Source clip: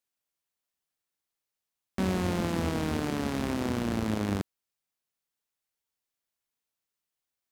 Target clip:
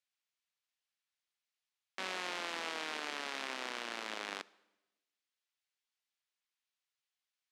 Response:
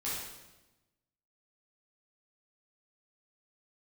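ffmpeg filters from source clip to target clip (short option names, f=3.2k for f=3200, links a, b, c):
-filter_complex "[0:a]highpass=360,lowpass=2.9k,aderivative,asplit=2[a][b];[1:a]atrim=start_sample=2205[c];[b][c]afir=irnorm=-1:irlink=0,volume=-23.5dB[d];[a][d]amix=inputs=2:normalize=0,volume=11.5dB"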